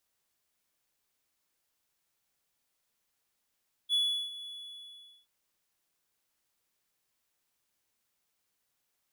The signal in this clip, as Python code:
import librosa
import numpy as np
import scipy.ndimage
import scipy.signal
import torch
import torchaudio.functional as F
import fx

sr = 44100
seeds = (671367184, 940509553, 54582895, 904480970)

y = fx.adsr_tone(sr, wave='triangle', hz=3410.0, attack_ms=46.0, decay_ms=364.0, sustain_db=-16.5, held_s=0.57, release_ms=806.0, level_db=-22.0)